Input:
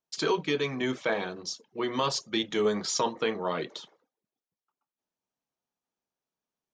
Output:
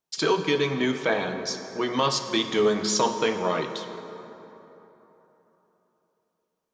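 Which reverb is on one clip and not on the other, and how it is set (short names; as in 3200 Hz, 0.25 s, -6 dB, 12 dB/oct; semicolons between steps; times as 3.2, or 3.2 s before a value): plate-style reverb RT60 3.6 s, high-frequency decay 0.5×, DRR 7 dB; gain +4 dB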